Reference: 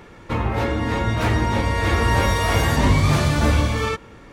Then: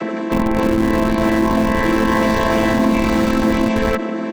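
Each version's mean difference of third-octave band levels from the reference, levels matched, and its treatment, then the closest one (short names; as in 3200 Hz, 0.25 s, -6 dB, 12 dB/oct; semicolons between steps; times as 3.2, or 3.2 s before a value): 6.5 dB: chord vocoder minor triad, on A3; comb 5.6 ms, depth 32%; in parallel at -5 dB: Schmitt trigger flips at -18 dBFS; on the sum: fast leveller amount 70%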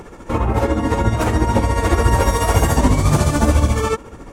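3.0 dB: graphic EQ 125/2000/4000/8000 Hz -4/-7/-8/+5 dB; in parallel at +3 dB: compressor, threshold -25 dBFS, peak gain reduction 11.5 dB; on the sum: tremolo 14 Hz, depth 53%; phaser 1.9 Hz, delay 4.6 ms, feedback 27%; gain +2.5 dB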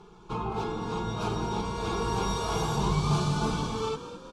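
4.5 dB: LPF 7100 Hz 12 dB/oct; fixed phaser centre 380 Hz, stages 8; comb 4.8 ms, depth 42%; frequency-shifting echo 0.208 s, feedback 52%, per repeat +41 Hz, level -12 dB; gain -5.5 dB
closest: second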